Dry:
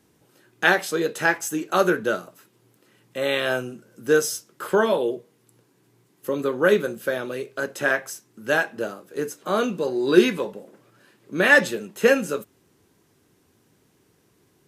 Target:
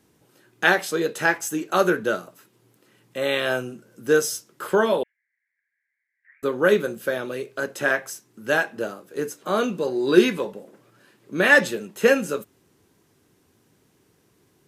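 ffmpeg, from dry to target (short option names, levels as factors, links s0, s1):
-filter_complex "[0:a]asettb=1/sr,asplit=3[s0][s1][s2];[s0]atrim=end=5.034[s3];[s1]atrim=start=5.03:end=6.43,asetpts=PTS-STARTPTS,afade=t=in:d=0.004:c=qsin,afade=t=out:st=1.396:d=0.004:c=qsin,asuperpass=centerf=1900:order=8:qfactor=3.2[s4];[s2]atrim=start=6.426[s5];[s3][s4]acrossfade=d=0.004:c1=hsin:c2=qsin[s6];[s6][s5]acrossfade=d=0.004:c1=qsin:c2=hsin"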